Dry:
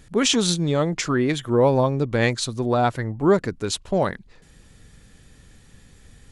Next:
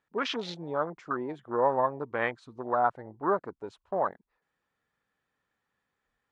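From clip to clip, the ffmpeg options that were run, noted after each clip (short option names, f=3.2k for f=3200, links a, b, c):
-af "afwtdn=0.0501,bandpass=f=1.1k:t=q:w=1.5:csg=0"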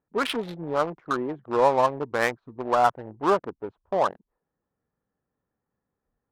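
-af "adynamicsmooth=sensitivity=6:basefreq=720,volume=5.5dB"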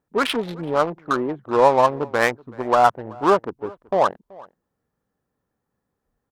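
-filter_complex "[0:a]asplit=2[a][b];[b]adelay=379,volume=-23dB,highshelf=f=4k:g=-8.53[c];[a][c]amix=inputs=2:normalize=0,volume=5dB"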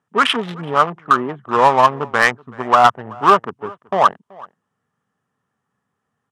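-af "highpass=f=100:w=0.5412,highpass=f=100:w=1.3066,equalizer=f=320:t=q:w=4:g=-9,equalizer=f=530:t=q:w=4:g=-7,equalizer=f=1.2k:t=q:w=4:g=7,equalizer=f=1.8k:t=q:w=4:g=4,equalizer=f=3k:t=q:w=4:g=6,equalizer=f=4.3k:t=q:w=4:g=-6,lowpass=f=9.9k:w=0.5412,lowpass=f=9.9k:w=1.3066,asoftclip=type=hard:threshold=-6.5dB,volume=4dB"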